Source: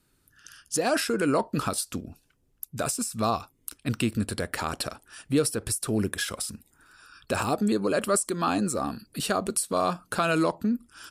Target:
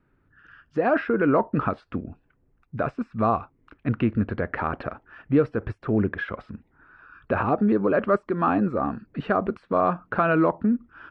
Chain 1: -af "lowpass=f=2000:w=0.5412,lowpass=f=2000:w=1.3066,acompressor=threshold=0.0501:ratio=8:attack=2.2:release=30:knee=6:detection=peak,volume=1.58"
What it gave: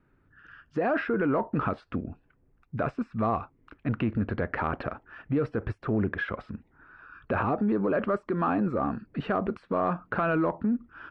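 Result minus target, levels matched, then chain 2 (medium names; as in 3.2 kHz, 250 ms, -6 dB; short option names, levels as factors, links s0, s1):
compression: peak gain reduction +9 dB
-af "lowpass=f=2000:w=0.5412,lowpass=f=2000:w=1.3066,volume=1.58"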